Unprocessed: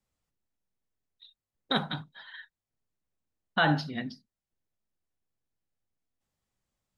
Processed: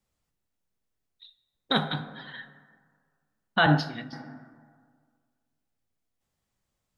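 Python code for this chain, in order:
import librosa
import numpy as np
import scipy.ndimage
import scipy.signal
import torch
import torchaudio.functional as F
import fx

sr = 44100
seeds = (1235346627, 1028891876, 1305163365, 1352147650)

y = fx.rev_plate(x, sr, seeds[0], rt60_s=1.8, hf_ratio=0.4, predelay_ms=0, drr_db=10.0)
y = fx.band_widen(y, sr, depth_pct=100, at=(3.66, 4.13))
y = y * librosa.db_to_amplitude(3.0)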